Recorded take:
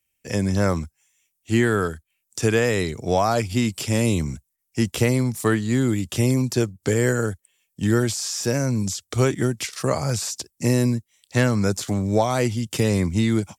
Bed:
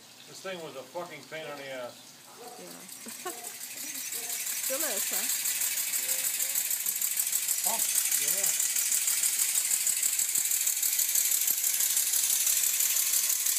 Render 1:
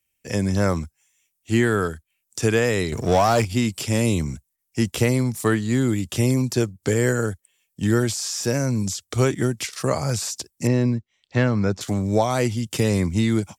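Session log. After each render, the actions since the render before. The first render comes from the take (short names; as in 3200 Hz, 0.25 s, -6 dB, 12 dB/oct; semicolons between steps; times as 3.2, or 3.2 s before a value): 2.92–3.45 power-law curve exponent 0.7; 10.67–11.81 air absorption 180 m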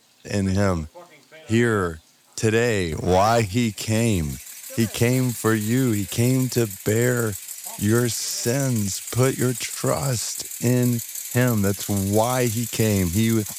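add bed -6 dB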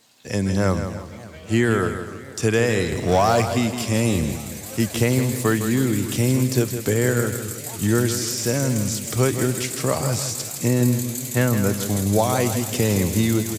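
feedback echo 0.162 s, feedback 38%, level -9 dB; warbling echo 0.29 s, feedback 71%, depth 189 cents, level -18.5 dB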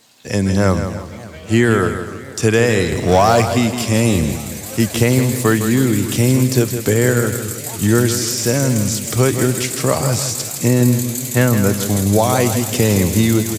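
gain +5.5 dB; limiter -2 dBFS, peak gain reduction 2 dB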